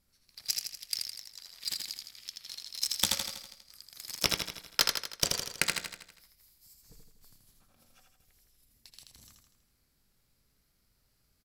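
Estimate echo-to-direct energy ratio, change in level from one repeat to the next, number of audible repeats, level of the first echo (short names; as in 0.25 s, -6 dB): -2.5 dB, -5.5 dB, 6, -4.0 dB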